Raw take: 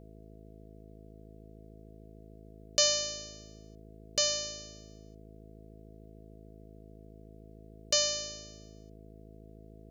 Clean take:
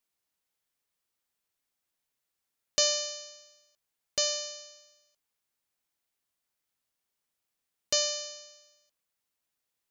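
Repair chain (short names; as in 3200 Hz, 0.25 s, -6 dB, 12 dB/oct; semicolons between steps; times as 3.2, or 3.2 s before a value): de-hum 53.5 Hz, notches 9; notch 660 Hz, Q 30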